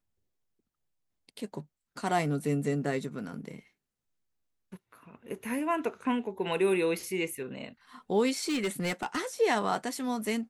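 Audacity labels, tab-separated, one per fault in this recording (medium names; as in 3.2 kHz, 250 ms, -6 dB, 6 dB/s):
8.370000	9.180000	clipped -26 dBFS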